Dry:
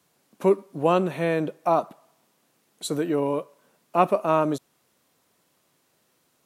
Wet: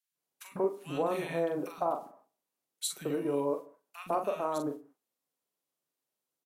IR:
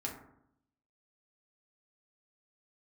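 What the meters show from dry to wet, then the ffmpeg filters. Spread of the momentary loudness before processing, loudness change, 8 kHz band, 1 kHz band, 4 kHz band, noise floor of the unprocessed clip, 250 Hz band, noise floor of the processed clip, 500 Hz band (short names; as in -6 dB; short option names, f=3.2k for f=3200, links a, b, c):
9 LU, -9.0 dB, 0.0 dB, -10.0 dB, -3.5 dB, -69 dBFS, -9.0 dB, under -85 dBFS, -8.5 dB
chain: -filter_complex "[0:a]agate=range=-21dB:threshold=-51dB:ratio=16:detection=peak,highpass=150,highshelf=f=9k:g=6.5,acompressor=threshold=-27dB:ratio=3,asplit=2[a][b];[b]adelay=42,volume=-6dB[c];[a][c]amix=inputs=2:normalize=0,acrossover=split=190|1600[d][e][f];[d]adelay=110[g];[e]adelay=150[h];[g][h][f]amix=inputs=3:normalize=0,asplit=2[i][j];[1:a]atrim=start_sample=2205,afade=t=out:st=0.23:d=0.01,atrim=end_sample=10584[k];[j][k]afir=irnorm=-1:irlink=0,volume=-13dB[l];[i][l]amix=inputs=2:normalize=0,volume=-3.5dB"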